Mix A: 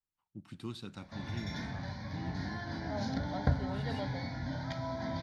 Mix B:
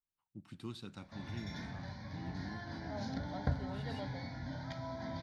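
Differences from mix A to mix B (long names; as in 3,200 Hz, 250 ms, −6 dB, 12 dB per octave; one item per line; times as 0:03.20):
speech −3.0 dB
background −5.0 dB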